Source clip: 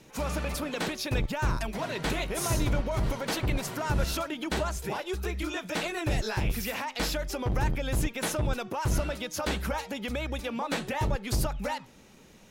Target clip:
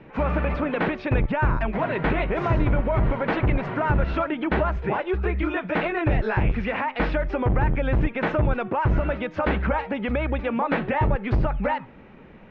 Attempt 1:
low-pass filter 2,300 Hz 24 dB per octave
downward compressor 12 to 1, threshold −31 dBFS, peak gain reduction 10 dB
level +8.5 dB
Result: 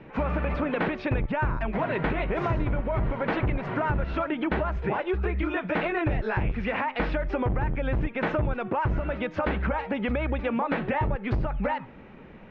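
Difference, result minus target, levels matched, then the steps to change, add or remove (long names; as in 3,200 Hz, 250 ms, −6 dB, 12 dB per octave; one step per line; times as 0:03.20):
downward compressor: peak gain reduction +6 dB
change: downward compressor 12 to 1, threshold −24.5 dBFS, peak gain reduction 4 dB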